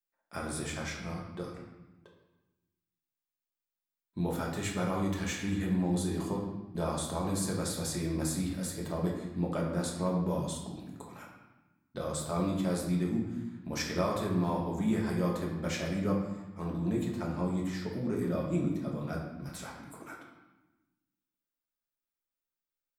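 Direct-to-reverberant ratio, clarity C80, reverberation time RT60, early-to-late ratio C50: -2.5 dB, 6.0 dB, 1.1 s, 3.5 dB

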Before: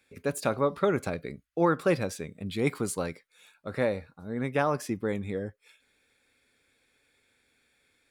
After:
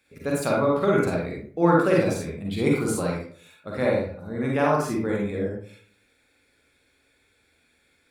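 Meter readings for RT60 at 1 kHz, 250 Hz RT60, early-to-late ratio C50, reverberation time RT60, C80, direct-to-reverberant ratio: 0.45 s, 0.60 s, 0.0 dB, 0.50 s, 5.5 dB, -3.5 dB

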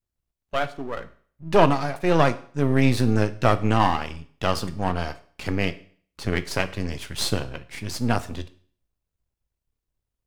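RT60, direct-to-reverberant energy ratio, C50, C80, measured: 0.50 s, 11.5 dB, 17.0 dB, 20.0 dB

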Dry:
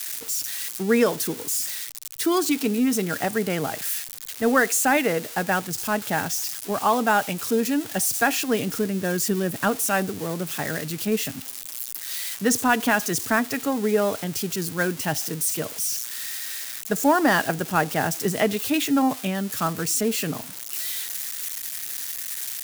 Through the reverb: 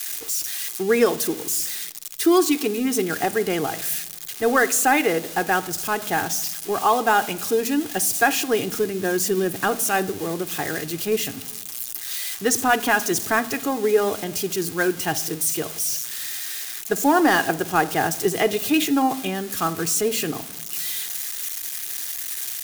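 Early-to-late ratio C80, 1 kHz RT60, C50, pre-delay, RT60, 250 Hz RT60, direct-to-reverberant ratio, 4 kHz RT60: 21.5 dB, 0.95 s, 18.0 dB, 3 ms, 1.0 s, 1.4 s, 10.5 dB, 0.70 s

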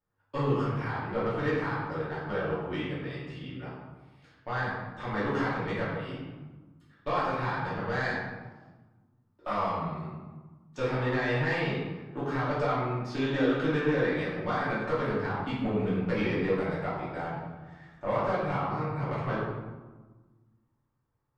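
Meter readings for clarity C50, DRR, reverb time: 0.0 dB, -10.0 dB, 1.3 s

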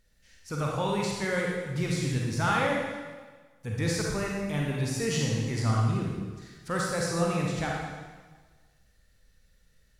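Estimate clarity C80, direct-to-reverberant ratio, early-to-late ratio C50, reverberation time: 2.0 dB, -2.5 dB, -0.5 dB, 1.4 s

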